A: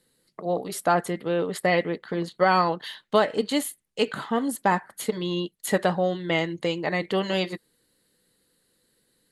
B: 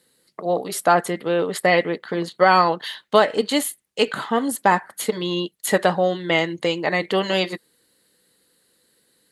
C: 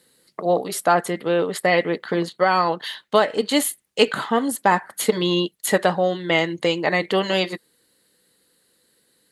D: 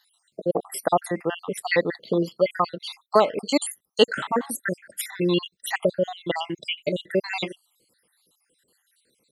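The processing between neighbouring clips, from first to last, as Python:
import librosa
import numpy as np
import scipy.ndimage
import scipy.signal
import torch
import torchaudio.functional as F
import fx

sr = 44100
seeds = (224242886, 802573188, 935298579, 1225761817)

y1 = scipy.signal.sosfilt(scipy.signal.butter(2, 42.0, 'highpass', fs=sr, output='sos'), x)
y1 = fx.low_shelf(y1, sr, hz=220.0, db=-8.0)
y1 = y1 * 10.0 ** (6.0 / 20.0)
y2 = fx.rider(y1, sr, range_db=10, speed_s=0.5)
y3 = fx.spec_dropout(y2, sr, seeds[0], share_pct=66)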